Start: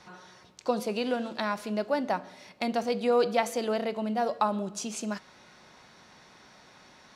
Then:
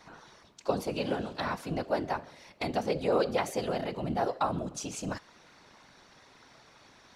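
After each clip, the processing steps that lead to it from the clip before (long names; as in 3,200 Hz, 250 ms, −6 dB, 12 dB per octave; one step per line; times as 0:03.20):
random phases in short frames
level −2.5 dB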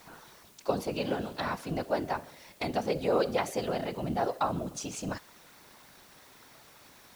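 bit-depth reduction 10 bits, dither triangular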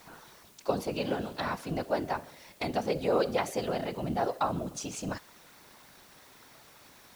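no processing that can be heard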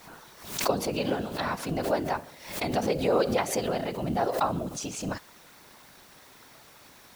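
background raised ahead of every attack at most 93 dB per second
level +2.5 dB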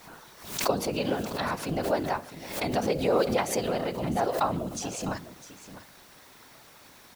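single-tap delay 654 ms −14 dB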